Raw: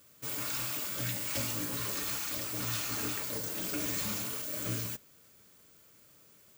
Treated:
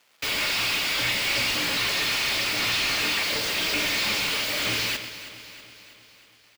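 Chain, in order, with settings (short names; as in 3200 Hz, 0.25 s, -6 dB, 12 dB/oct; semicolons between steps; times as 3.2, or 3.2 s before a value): gate with hold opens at -47 dBFS; band shelf 3200 Hz +12 dB; requantised 12-bit, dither none; overdrive pedal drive 30 dB, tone 2400 Hz, clips at -14 dBFS; on a send: feedback echo 0.323 s, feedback 57%, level -14 dB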